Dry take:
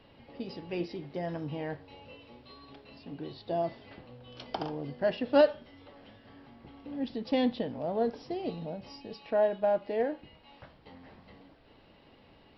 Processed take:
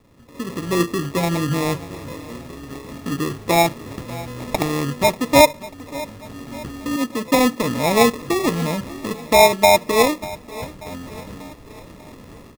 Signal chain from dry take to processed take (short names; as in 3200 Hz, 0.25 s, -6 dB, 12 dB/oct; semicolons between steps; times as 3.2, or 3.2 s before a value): Wiener smoothing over 41 samples; in parallel at -1 dB: compressor, threshold -41 dBFS, peak gain reduction 21 dB; 1.09–1.65 on the sum: notches 50/100/150/200/250/300/350/400/450/500 Hz; 6.96–7.64 HPF 380 Hz 6 dB/oct; sample-and-hold 29×; AGC gain up to 14.5 dB; on a send: feedback echo 0.59 s, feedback 50%, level -18.5 dB